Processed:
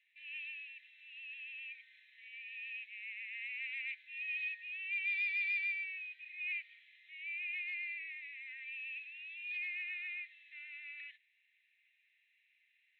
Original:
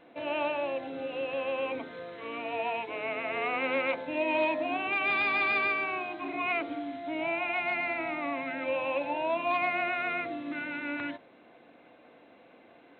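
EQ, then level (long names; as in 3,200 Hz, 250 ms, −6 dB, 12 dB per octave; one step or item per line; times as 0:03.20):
Chebyshev high-pass with heavy ripple 1,800 Hz, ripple 6 dB
high-shelf EQ 2,800 Hz −10.5 dB
0.0 dB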